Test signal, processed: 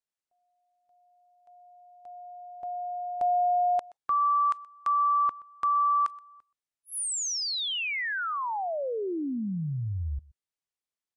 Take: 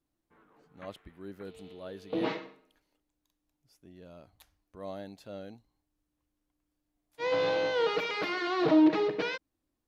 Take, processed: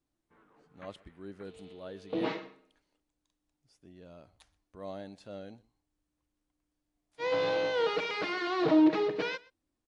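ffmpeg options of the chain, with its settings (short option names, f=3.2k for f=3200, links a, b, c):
-filter_complex "[0:a]asplit=2[a][b];[b]aecho=0:1:125:0.0708[c];[a][c]amix=inputs=2:normalize=0,volume=-1dB" -ar 22050 -c:a aac -b:a 64k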